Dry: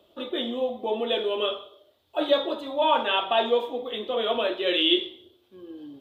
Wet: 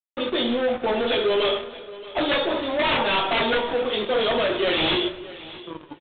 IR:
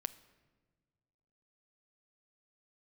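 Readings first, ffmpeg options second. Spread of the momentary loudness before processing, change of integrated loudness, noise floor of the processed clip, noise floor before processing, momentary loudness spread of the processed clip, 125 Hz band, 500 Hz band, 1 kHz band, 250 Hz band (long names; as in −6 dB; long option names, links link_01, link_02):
12 LU, +2.5 dB, −45 dBFS, −64 dBFS, 16 LU, can't be measured, +2.5 dB, +1.5 dB, +4.0 dB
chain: -filter_complex "[0:a]bandreject=frequency=50:width_type=h:width=6,bandreject=frequency=100:width_type=h:width=6,bandreject=frequency=150:width_type=h:width=6,bandreject=frequency=200:width_type=h:width=6,bandreject=frequency=250:width_type=h:width=6,bandreject=frequency=300:width_type=h:width=6,bandreject=frequency=350:width_type=h:width=6,acrossover=split=200[link_01][link_02];[link_02]aeval=exprs='(mod(6.31*val(0)+1,2)-1)/6.31':channel_layout=same[link_03];[link_01][link_03]amix=inputs=2:normalize=0,acrusher=bits=5:mix=0:aa=0.5,aresample=8000,asoftclip=type=hard:threshold=-28dB,aresample=44100,asplit=2[link_04][link_05];[link_05]adelay=20,volume=-10.5dB[link_06];[link_04][link_06]amix=inputs=2:normalize=0,aecho=1:1:625|1250:0.133|0.0213[link_07];[1:a]atrim=start_sample=2205,afade=type=out:start_time=0.31:duration=0.01,atrim=end_sample=14112,asetrate=25137,aresample=44100[link_08];[link_07][link_08]afir=irnorm=-1:irlink=0,volume=6.5dB"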